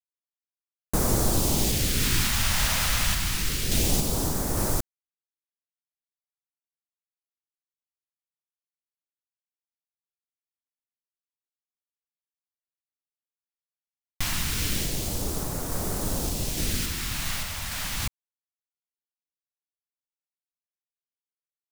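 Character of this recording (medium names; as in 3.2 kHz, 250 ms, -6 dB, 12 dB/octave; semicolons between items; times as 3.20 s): phasing stages 2, 0.27 Hz, lowest notch 360–2700 Hz; a quantiser's noise floor 6-bit, dither none; random-step tremolo 3.5 Hz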